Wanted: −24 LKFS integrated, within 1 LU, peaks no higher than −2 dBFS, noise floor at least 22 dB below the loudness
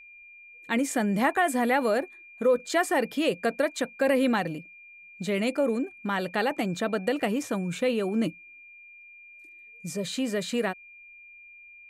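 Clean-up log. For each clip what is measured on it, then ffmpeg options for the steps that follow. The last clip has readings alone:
interfering tone 2,400 Hz; level of the tone −47 dBFS; integrated loudness −27.0 LKFS; sample peak −12.0 dBFS; target loudness −24.0 LKFS
→ -af "bandreject=frequency=2400:width=30"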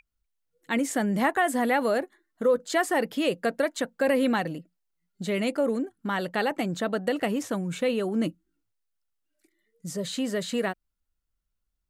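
interfering tone none found; integrated loudness −27.5 LKFS; sample peak −12.0 dBFS; target loudness −24.0 LKFS
→ -af "volume=3.5dB"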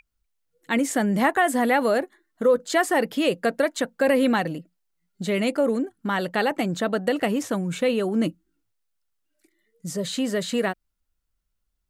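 integrated loudness −24.0 LKFS; sample peak −8.5 dBFS; background noise floor −76 dBFS

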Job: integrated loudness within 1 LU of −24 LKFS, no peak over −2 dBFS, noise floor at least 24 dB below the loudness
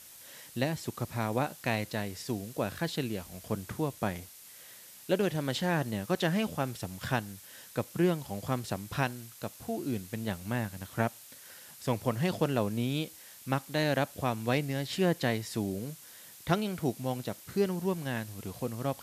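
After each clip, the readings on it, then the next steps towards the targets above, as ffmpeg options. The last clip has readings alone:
background noise floor −52 dBFS; target noise floor −57 dBFS; integrated loudness −33.0 LKFS; sample peak −12.0 dBFS; target loudness −24.0 LKFS
→ -af "afftdn=noise_reduction=6:noise_floor=-52"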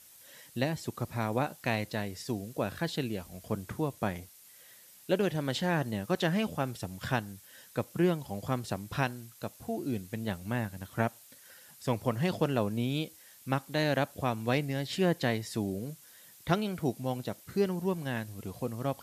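background noise floor −56 dBFS; target noise floor −57 dBFS
→ -af "afftdn=noise_reduction=6:noise_floor=-56"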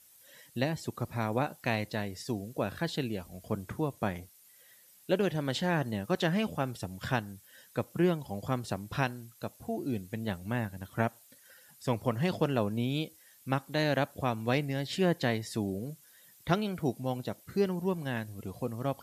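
background noise floor −60 dBFS; integrated loudness −33.0 LKFS; sample peak −12.0 dBFS; target loudness −24.0 LKFS
→ -af "volume=9dB"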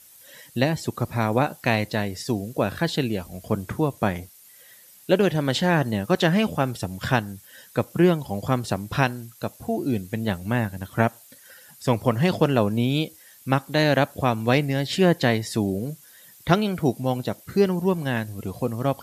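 integrated loudness −24.0 LKFS; sample peak −3.0 dBFS; background noise floor −51 dBFS

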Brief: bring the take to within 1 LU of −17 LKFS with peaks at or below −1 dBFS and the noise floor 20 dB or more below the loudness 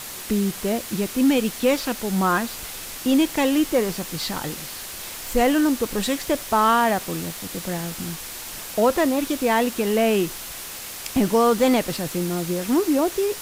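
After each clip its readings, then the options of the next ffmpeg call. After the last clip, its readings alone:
background noise floor −35 dBFS; target noise floor −43 dBFS; integrated loudness −22.5 LKFS; sample peak −8.5 dBFS; target loudness −17.0 LKFS
→ -af "afftdn=noise_reduction=8:noise_floor=-35"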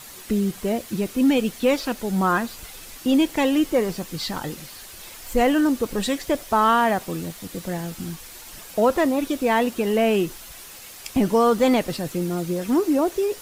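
background noise floor −42 dBFS; target noise floor −43 dBFS
→ -af "afftdn=noise_reduction=6:noise_floor=-42"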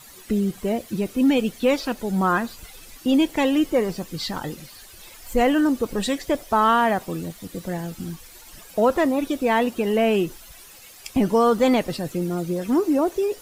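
background noise floor −46 dBFS; integrated loudness −22.5 LKFS; sample peak −9.0 dBFS; target loudness −17.0 LKFS
→ -af "volume=5.5dB"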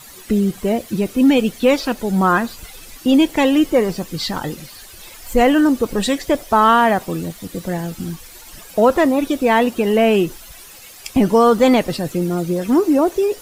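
integrated loudness −17.0 LKFS; sample peak −3.5 dBFS; background noise floor −40 dBFS

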